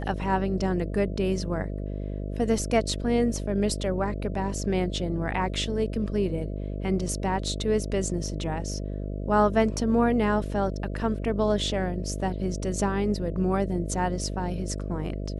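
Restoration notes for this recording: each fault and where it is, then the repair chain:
mains buzz 50 Hz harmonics 13 −32 dBFS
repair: hum removal 50 Hz, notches 13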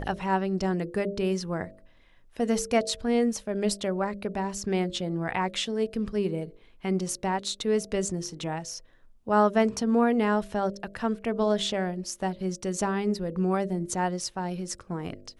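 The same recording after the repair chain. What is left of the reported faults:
none of them is left

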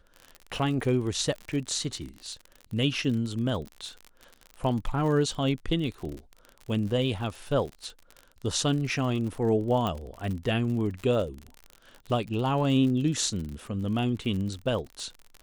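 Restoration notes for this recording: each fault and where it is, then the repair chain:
surface crackle 51 per second −34 dBFS
0:09.87: click −17 dBFS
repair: click removal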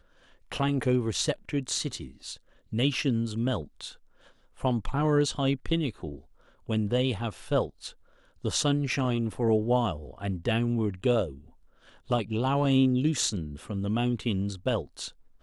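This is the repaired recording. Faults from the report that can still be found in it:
none of them is left

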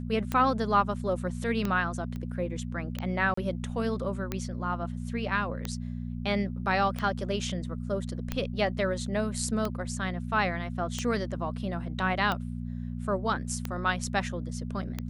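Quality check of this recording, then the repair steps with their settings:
mains hum 60 Hz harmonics 4 −35 dBFS
scratch tick 45 rpm −16 dBFS
0:02.16: click −26 dBFS
0:03.34–0:03.37: drop-out 34 ms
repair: click removal
hum removal 60 Hz, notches 4
repair the gap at 0:03.34, 34 ms

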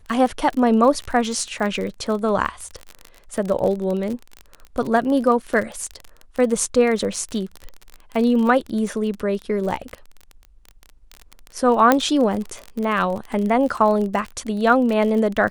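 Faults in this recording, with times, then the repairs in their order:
surface crackle 35 per second −25 dBFS
0:11.92: click −2 dBFS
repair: click removal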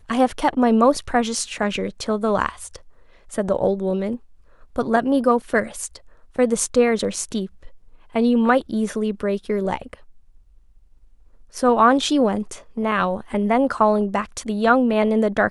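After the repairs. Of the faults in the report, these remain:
none of them is left

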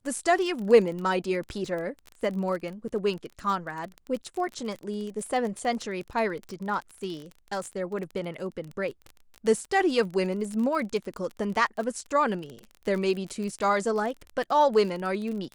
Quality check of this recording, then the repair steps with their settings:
surface crackle 29 per second −32 dBFS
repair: click removal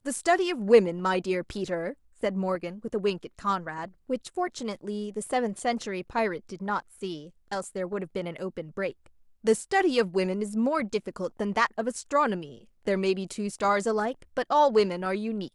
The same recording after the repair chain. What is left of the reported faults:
none of them is left

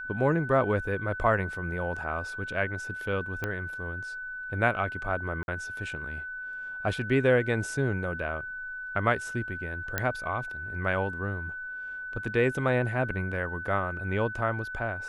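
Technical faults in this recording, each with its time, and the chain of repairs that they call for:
whistle 1,500 Hz −35 dBFS
0:03.44: click −17 dBFS
0:05.43–0:05.48: drop-out 51 ms
0:09.98: click −11 dBFS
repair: click removal
notch filter 1,500 Hz, Q 30
repair the gap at 0:05.43, 51 ms

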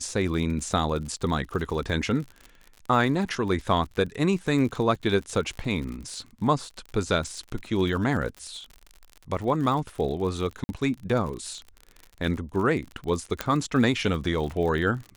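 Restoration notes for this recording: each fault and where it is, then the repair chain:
surface crackle 51 per second −33 dBFS
0:10.64–0:10.69: drop-out 50 ms
0:13.41: click −10 dBFS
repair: click removal
repair the gap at 0:10.64, 50 ms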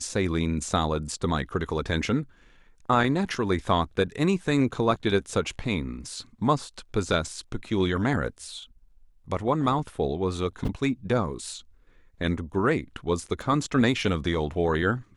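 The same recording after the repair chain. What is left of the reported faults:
0:13.41: click

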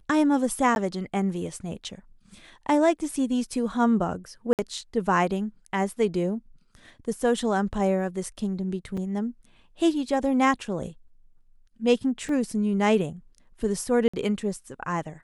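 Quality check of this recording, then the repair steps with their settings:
0:00.75–0:00.76: drop-out 11 ms
0:04.53–0:04.59: drop-out 58 ms
0:08.97: drop-out 4.8 ms
0:12.29: drop-out 2.4 ms
0:14.08–0:14.13: drop-out 55 ms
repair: repair the gap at 0:00.75, 11 ms
repair the gap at 0:04.53, 58 ms
repair the gap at 0:08.97, 4.8 ms
repair the gap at 0:12.29, 2.4 ms
repair the gap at 0:14.08, 55 ms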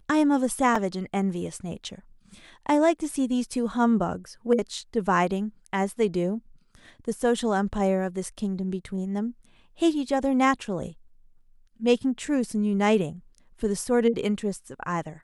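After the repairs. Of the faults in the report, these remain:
none of them is left

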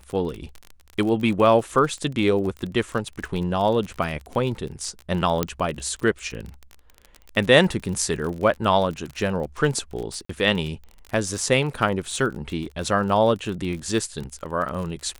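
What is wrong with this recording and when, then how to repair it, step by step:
surface crackle 34 per second −29 dBFS
0:05.43: click −6 dBFS
0:10.25–0:10.29: drop-out 44 ms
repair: click removal
repair the gap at 0:10.25, 44 ms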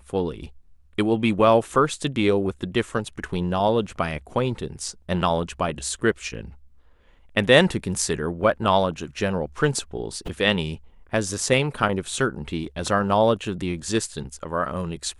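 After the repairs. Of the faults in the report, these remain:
none of them is left

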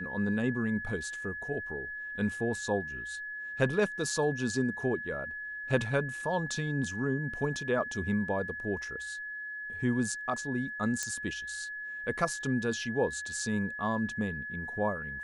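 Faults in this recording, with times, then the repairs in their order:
whistle 1,700 Hz −37 dBFS
0:11.03: click −18 dBFS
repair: click removal
notch filter 1,700 Hz, Q 30

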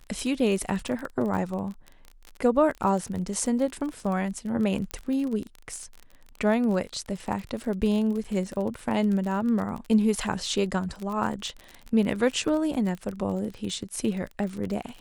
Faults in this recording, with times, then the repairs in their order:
surface crackle 36 per second −31 dBFS
0:04.91: click −17 dBFS
0:08.24–0:08.25: drop-out 6.1 ms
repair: click removal
repair the gap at 0:08.24, 6.1 ms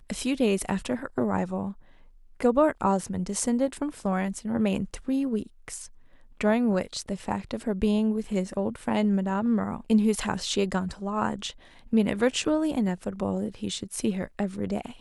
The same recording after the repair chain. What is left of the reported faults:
none of them is left

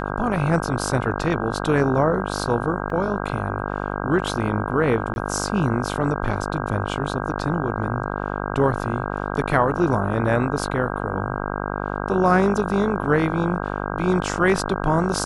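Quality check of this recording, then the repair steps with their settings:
mains buzz 50 Hz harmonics 32 −27 dBFS
0:02.90: drop-out 2.3 ms
0:05.14–0:05.16: drop-out 21 ms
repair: hum removal 50 Hz, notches 32
repair the gap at 0:02.90, 2.3 ms
repair the gap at 0:05.14, 21 ms

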